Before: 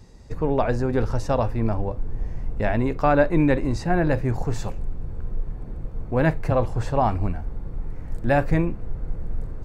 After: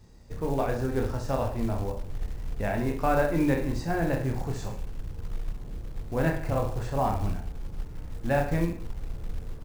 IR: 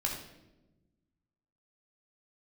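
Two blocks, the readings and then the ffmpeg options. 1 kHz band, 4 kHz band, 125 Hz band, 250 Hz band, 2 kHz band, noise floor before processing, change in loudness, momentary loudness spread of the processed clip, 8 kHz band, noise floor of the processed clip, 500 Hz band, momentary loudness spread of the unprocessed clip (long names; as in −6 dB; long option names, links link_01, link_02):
−5.5 dB, −2.5 dB, −5.5 dB, −5.5 dB, −5.0 dB, −35 dBFS, −5.5 dB, 14 LU, can't be measured, −40 dBFS, −5.5 dB, 15 LU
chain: -af "aecho=1:1:30|64.5|104.2|149.8|202.3:0.631|0.398|0.251|0.158|0.1,acrusher=bits=6:mode=log:mix=0:aa=0.000001,volume=-7.5dB"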